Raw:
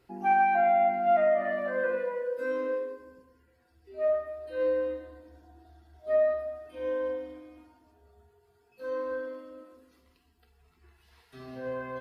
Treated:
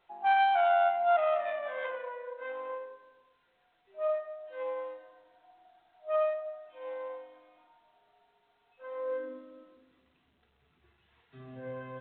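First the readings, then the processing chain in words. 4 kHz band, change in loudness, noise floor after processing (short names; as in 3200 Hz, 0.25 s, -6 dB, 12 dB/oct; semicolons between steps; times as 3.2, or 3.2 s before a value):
n/a, -3.0 dB, -72 dBFS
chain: self-modulated delay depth 0.24 ms; high-pass sweep 760 Hz -> 120 Hz, 8.94–9.6; gain -6.5 dB; A-law 64 kbps 8000 Hz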